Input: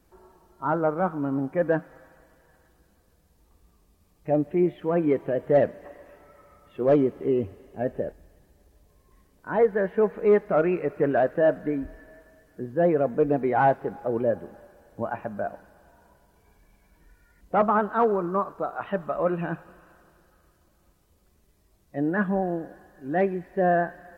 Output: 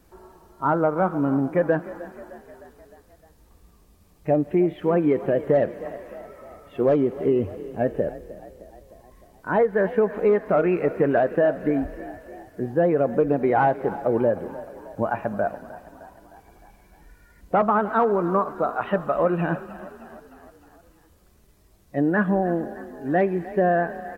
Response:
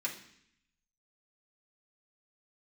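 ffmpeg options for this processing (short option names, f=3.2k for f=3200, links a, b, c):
-filter_complex "[0:a]acompressor=threshold=-22dB:ratio=6,asplit=6[a][b][c][d][e][f];[b]adelay=307,afreqshift=30,volume=-17dB[g];[c]adelay=614,afreqshift=60,volume=-21.7dB[h];[d]adelay=921,afreqshift=90,volume=-26.5dB[i];[e]adelay=1228,afreqshift=120,volume=-31.2dB[j];[f]adelay=1535,afreqshift=150,volume=-35.9dB[k];[a][g][h][i][j][k]amix=inputs=6:normalize=0,volume=6dB"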